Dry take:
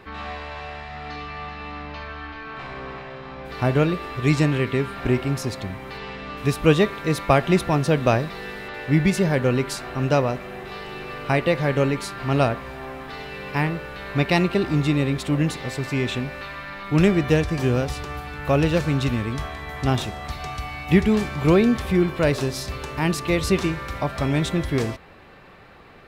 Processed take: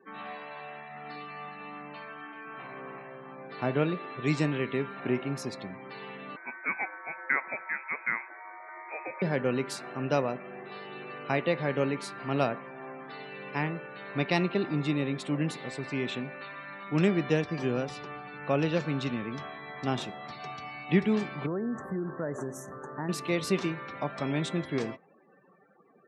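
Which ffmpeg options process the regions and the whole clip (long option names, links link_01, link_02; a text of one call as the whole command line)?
ffmpeg -i in.wav -filter_complex "[0:a]asettb=1/sr,asplit=3[link_01][link_02][link_03];[link_01]atrim=end=6.364[link_04];[link_02]atrim=start=6.36:end=9.22,asetpts=PTS-STARTPTS,afade=type=in:duration=0.004:curve=qsin,afade=type=out:start_time=2.856:duration=0.004:curve=qsin,highpass=720,lowpass=frequency=2300:width_type=q:width=0.5098,lowpass=frequency=2300:width_type=q:width=0.6013,lowpass=frequency=2300:width_type=q:width=0.9,lowpass=frequency=2300:width_type=q:width=2.563,afreqshift=-2700[link_05];[link_03]atrim=start=9.216[link_06];[link_04][link_05]acrossfade=duration=0.004:curve1=hsin:curve2=qsin[link_07];[link_07][link_06]acrossfade=duration=0.004:curve1=qsin:curve2=hsin,asettb=1/sr,asplit=3[link_08][link_09][link_10];[link_08]atrim=end=21.464[link_11];[link_09]atrim=start=21.46:end=23.09,asetpts=PTS-STARTPTS,afade=type=in:duration=0.004:curve=qsin,afade=type=out:start_time=1.626:duration=0.004:curve=qsin,asuperstop=centerf=3400:order=12:qfactor=0.82,acompressor=threshold=-21dB:ratio=6:attack=3.2:release=140:knee=1:detection=peak[link_12];[link_10]atrim=start=23.086[link_13];[link_11][link_12]acrossfade=duration=0.004:curve1=hsin:curve2=qsin[link_14];[link_14][link_13]acrossfade=duration=0.004:curve1=qsin:curve2=hsin,highpass=frequency=150:width=0.5412,highpass=frequency=150:width=1.3066,afftdn=noise_reduction=35:noise_floor=-42,volume=-7dB" out.wav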